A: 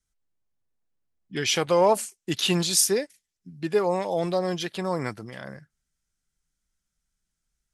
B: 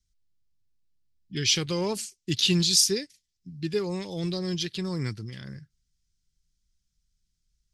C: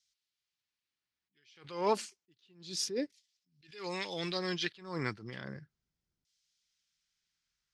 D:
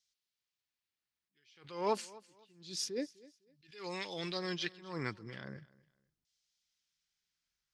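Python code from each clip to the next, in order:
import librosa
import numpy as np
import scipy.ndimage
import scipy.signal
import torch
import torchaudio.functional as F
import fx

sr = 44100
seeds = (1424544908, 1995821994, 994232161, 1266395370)

y1 = fx.curve_eq(x, sr, hz=(110.0, 250.0, 390.0, 640.0, 4800.0, 9700.0), db=(0, -9, -10, -26, -1, -13))
y1 = y1 * 10.0 ** (7.0 / 20.0)
y2 = fx.filter_lfo_bandpass(y1, sr, shape='saw_down', hz=0.32, low_hz=460.0, high_hz=3800.0, q=0.91)
y2 = fx.attack_slew(y2, sr, db_per_s=110.0)
y2 = y2 * 10.0 ** (7.5 / 20.0)
y3 = fx.echo_feedback(y2, sr, ms=253, feedback_pct=26, wet_db=-21.5)
y3 = y3 * 10.0 ** (-3.0 / 20.0)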